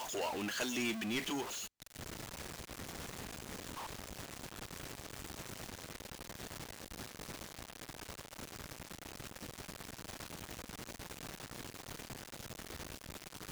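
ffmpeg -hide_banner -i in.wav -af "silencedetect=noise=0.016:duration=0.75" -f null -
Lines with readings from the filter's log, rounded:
silence_start: 1.42
silence_end: 13.51 | silence_duration: 12.09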